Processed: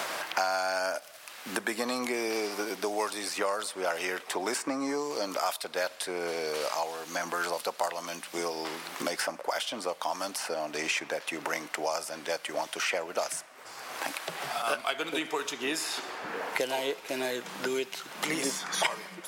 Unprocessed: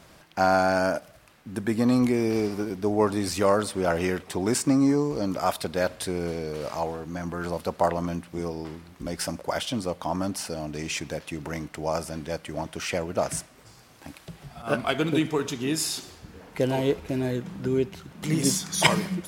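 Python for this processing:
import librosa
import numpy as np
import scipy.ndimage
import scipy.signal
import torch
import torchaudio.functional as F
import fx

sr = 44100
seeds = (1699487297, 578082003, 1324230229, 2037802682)

y = scipy.signal.sosfilt(scipy.signal.butter(2, 650.0, 'highpass', fs=sr, output='sos'), x)
y = fx.band_squash(y, sr, depth_pct=100)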